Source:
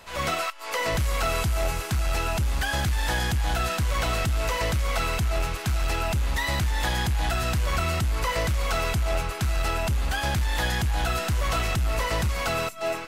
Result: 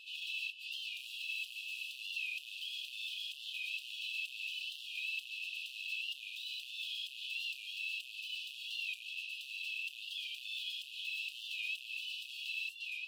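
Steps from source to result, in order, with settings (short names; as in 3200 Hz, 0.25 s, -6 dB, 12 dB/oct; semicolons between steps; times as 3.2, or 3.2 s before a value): tilt +2 dB/oct; soft clip -31 dBFS, distortion -9 dB; brick-wall FIR high-pass 2500 Hz; air absorption 500 m; record warp 45 rpm, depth 100 cents; gain +8.5 dB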